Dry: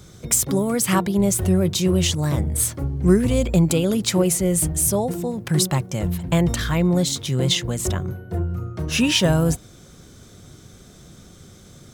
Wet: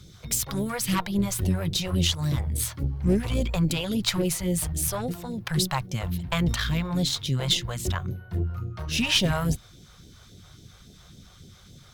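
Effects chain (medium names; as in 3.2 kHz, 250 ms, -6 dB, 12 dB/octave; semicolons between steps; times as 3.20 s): graphic EQ 1/4/8 kHz +5/+4/-8 dB; valve stage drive 14 dB, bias 0.6; phase shifter stages 2, 3.6 Hz, lowest notch 240–1200 Hz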